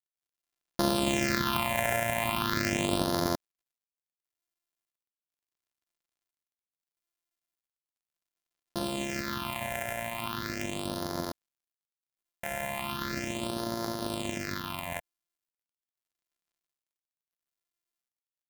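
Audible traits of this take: a buzz of ramps at a fixed pitch in blocks of 128 samples; phasing stages 6, 0.38 Hz, lowest notch 310–2500 Hz; a quantiser's noise floor 12-bit, dither none

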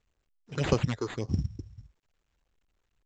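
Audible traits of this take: phasing stages 6, 1.7 Hz, lowest notch 170–3800 Hz; aliases and images of a low sample rate 5500 Hz, jitter 0%; µ-law

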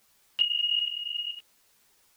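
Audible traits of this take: tremolo saw up 2.3 Hz, depth 70%; a quantiser's noise floor 12-bit, dither triangular; a shimmering, thickened sound

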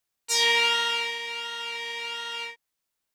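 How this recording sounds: noise floor -82 dBFS; spectral tilt +1.0 dB/oct

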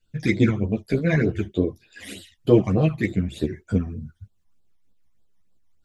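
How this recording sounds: phasing stages 12, 3.3 Hz, lowest notch 430–2200 Hz; tremolo saw up 6.1 Hz, depth 40%; a shimmering, thickened sound

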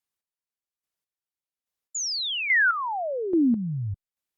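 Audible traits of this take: chopped level 1.2 Hz, depth 65%, duty 25%; Opus

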